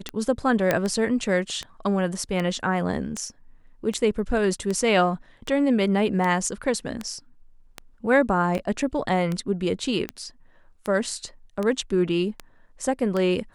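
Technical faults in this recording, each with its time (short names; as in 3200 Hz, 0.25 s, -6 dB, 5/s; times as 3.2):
tick 78 rpm -15 dBFS
0.71 pop -7 dBFS
8.58–8.59 gap 6.9 ms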